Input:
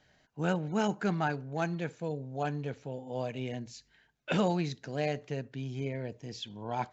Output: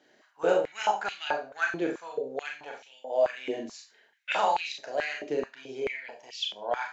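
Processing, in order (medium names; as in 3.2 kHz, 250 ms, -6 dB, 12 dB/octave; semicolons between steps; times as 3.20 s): Schroeder reverb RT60 0.3 s, combs from 27 ms, DRR 1 dB; step-sequenced high-pass 4.6 Hz 340–2800 Hz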